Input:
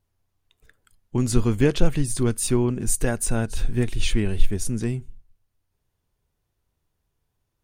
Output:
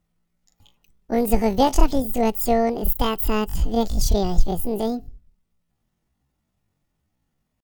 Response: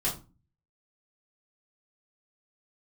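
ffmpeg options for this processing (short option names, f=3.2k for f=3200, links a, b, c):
-af "bandreject=f=850:w=14,asetrate=83250,aresample=44100,atempo=0.529732,volume=1.5dB"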